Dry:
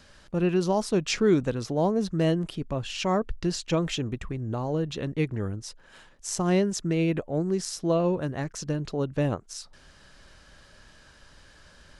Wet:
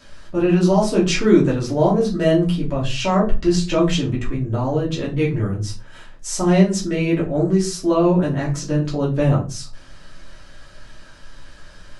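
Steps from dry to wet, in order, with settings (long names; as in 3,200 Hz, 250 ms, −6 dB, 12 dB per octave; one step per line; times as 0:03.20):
rectangular room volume 160 cubic metres, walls furnished, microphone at 2.8 metres
level +1 dB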